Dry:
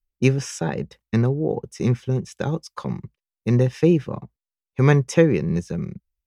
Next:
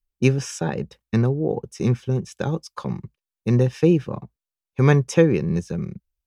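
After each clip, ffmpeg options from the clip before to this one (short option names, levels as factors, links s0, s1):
-af "bandreject=f=2000:w=12"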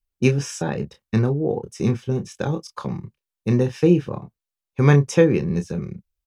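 -filter_complex "[0:a]asplit=2[s0][s1];[s1]adelay=28,volume=0.398[s2];[s0][s2]amix=inputs=2:normalize=0"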